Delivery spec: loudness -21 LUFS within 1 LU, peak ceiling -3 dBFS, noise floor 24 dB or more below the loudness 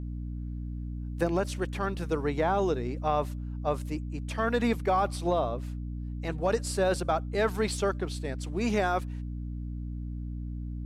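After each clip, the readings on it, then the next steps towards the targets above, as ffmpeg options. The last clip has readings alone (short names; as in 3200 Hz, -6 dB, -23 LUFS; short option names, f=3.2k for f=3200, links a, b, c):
hum 60 Hz; harmonics up to 300 Hz; hum level -33 dBFS; loudness -31.0 LUFS; peak -14.5 dBFS; loudness target -21.0 LUFS
-> -af "bandreject=f=60:t=h:w=6,bandreject=f=120:t=h:w=6,bandreject=f=180:t=h:w=6,bandreject=f=240:t=h:w=6,bandreject=f=300:t=h:w=6"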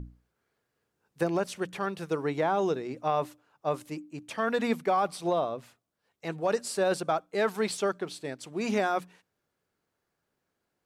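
hum none; loudness -30.5 LUFS; peak -15.5 dBFS; loudness target -21.0 LUFS
-> -af "volume=9.5dB"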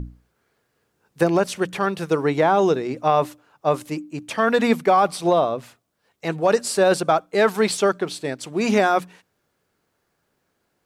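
loudness -21.0 LUFS; peak -6.0 dBFS; noise floor -72 dBFS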